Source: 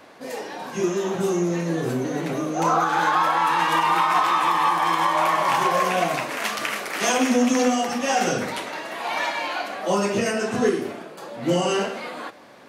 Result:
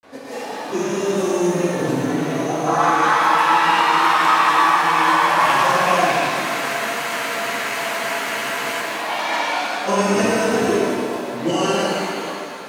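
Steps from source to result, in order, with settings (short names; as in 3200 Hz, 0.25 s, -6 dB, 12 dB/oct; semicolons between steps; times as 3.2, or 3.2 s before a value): grains, pitch spread up and down by 0 st; spectral freeze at 6.33, 2.45 s; shimmer reverb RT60 2 s, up +7 st, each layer -8 dB, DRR -4 dB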